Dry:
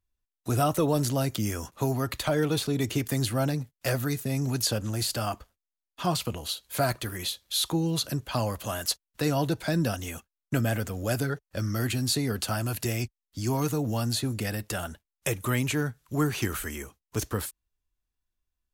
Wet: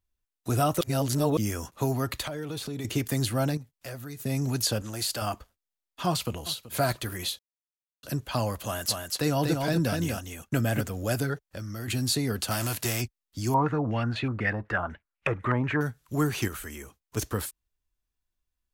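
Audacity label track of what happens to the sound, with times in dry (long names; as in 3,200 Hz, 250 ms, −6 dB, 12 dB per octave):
0.810000	1.370000	reverse
2.250000	2.850000	downward compressor, threshold −31 dBFS
3.570000	4.200000	downward compressor 1.5 to 1, threshold −56 dBFS
4.820000	5.220000	low-shelf EQ 260 Hz −9.5 dB
6.080000	6.750000	delay throw 380 ms, feedback 35%, level −16 dB
7.390000	8.030000	silence
8.640000	10.810000	single-tap delay 242 ms −4 dB
11.470000	11.880000	downward compressor 2.5 to 1, threshold −36 dBFS
12.500000	13.000000	spectral envelope flattened exponent 0.6
13.540000	15.810000	low-pass on a step sequencer 8.1 Hz 960–2,500 Hz
16.480000	17.170000	downward compressor 1.5 to 1, threshold −43 dBFS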